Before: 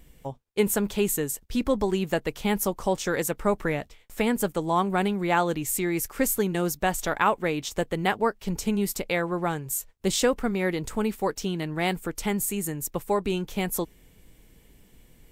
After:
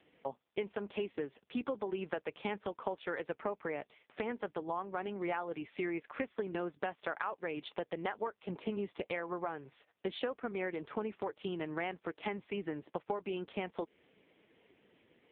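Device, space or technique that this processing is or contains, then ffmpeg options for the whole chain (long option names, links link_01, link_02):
voicemail: -af "highpass=330,lowpass=3300,acompressor=threshold=-34dB:ratio=10,volume=1.5dB" -ar 8000 -c:a libopencore_amrnb -b:a 5150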